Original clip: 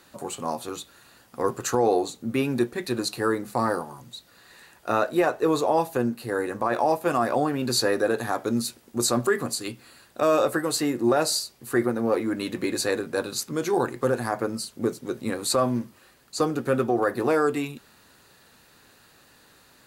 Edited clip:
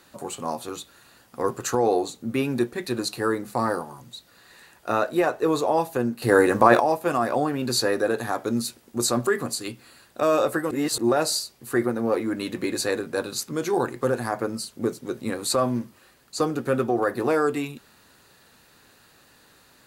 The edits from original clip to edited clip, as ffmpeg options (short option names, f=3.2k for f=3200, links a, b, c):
-filter_complex "[0:a]asplit=5[a][b][c][d][e];[a]atrim=end=6.222[f];[b]atrim=start=6.218:end=6.802,asetpts=PTS-STARTPTS,volume=10dB[g];[c]atrim=start=6.798:end=10.712[h];[d]atrim=start=10.708:end=10.982,asetpts=PTS-STARTPTS,areverse[i];[e]atrim=start=10.978[j];[f][g]acrossfade=d=0.004:c1=hsin:c2=hsin[k];[k][h]acrossfade=d=0.004:c1=hsin:c2=hsin[l];[l][i]acrossfade=d=0.004:c1=hsin:c2=hsin[m];[m][j]acrossfade=d=0.004:c1=hsin:c2=hsin"